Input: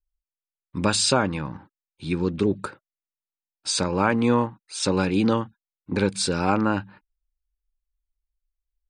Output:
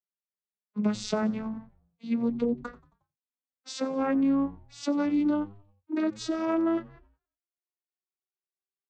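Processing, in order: vocoder on a note that slides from G3, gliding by +12 st; compression 4:1, threshold -23 dBFS, peak gain reduction 8 dB; on a send: frequency-shifting echo 90 ms, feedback 52%, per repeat -98 Hz, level -22 dB

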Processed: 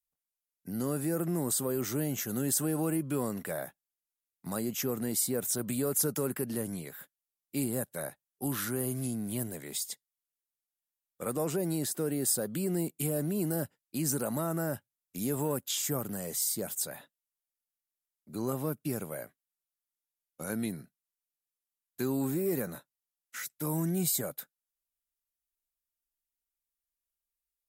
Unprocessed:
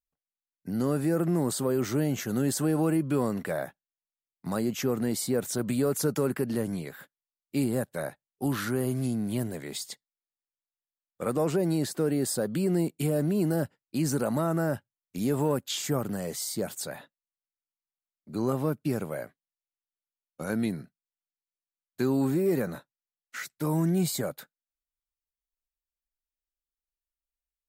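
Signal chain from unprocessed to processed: peaking EQ 13 kHz +13 dB 1.5 oct; band-stop 4.4 kHz, Q 17; trim -5.5 dB

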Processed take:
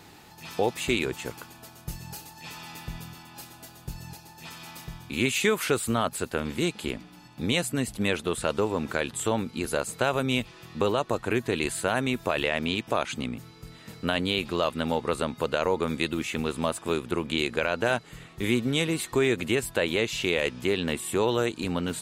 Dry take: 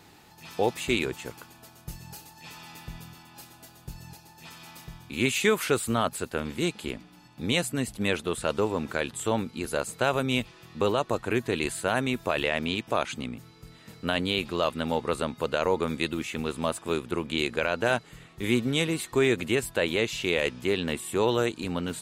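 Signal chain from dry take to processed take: compression 1.5:1, threshold -30 dBFS, peak gain reduction 5 dB; trim +3.5 dB

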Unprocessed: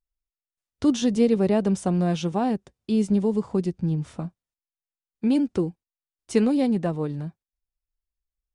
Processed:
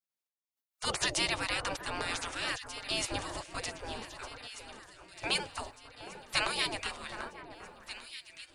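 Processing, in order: spectral gate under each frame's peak -30 dB weak; level rider; echo whose repeats swap between lows and highs 769 ms, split 1.8 kHz, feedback 71%, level -10 dB

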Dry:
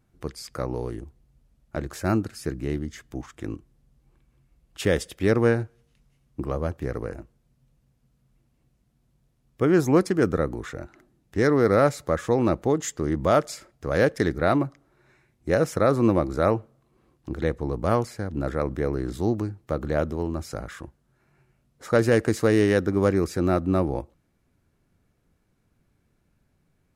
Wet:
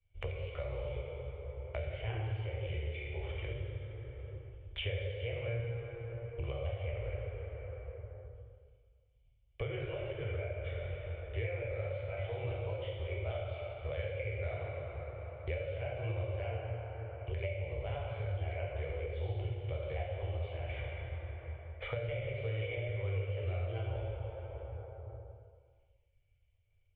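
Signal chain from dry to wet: pitch shift switched off and on +3 st, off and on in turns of 266 ms; expander -50 dBFS; elliptic band-stop 100–530 Hz, stop band 50 dB; compression, threshold -23 dBFS, peak gain reduction 7.5 dB; cascade formant filter i; plate-style reverb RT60 1.8 s, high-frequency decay 0.65×, DRR -5 dB; three bands compressed up and down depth 100%; trim +5 dB

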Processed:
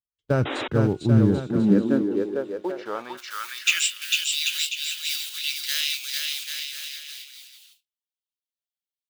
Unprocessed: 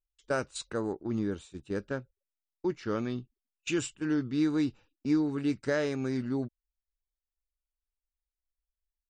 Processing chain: block-companded coder 5-bit; peaking EQ 3.4 kHz +7 dB 1.1 oct; bouncing-ball echo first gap 450 ms, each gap 0.75×, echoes 5; high-pass sweep 110 Hz -> 3 kHz, 1.18–4.13 s; de-hum 361.3 Hz, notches 9; 0.45–0.68 s: painted sound noise 240–3900 Hz -31 dBFS; tilt EQ -3.5 dB/octave, from 3.17 s +3.5 dB/octave; gate with hold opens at -43 dBFS; trim +2.5 dB

